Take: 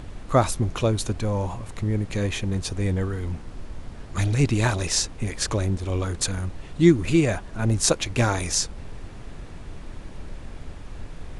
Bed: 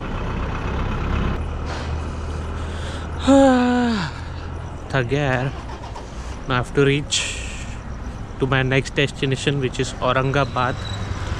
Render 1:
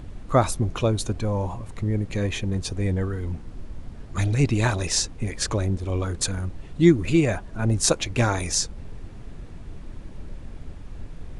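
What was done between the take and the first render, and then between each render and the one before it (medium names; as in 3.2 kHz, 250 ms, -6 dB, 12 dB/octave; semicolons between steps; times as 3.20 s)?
noise reduction 6 dB, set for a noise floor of -40 dBFS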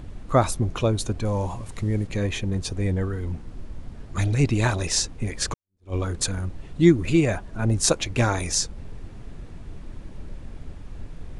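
1.25–2.07 s: treble shelf 3 kHz +8 dB; 5.54–5.94 s: fade in exponential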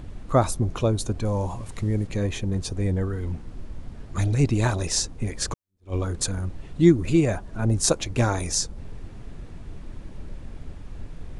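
dynamic bell 2.4 kHz, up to -5 dB, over -42 dBFS, Q 0.82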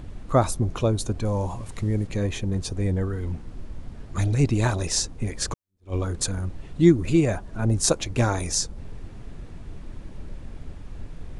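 no audible change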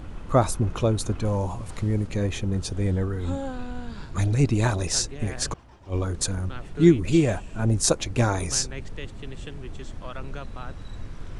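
add bed -20 dB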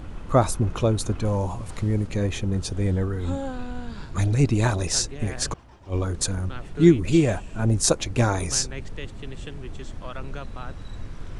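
trim +1 dB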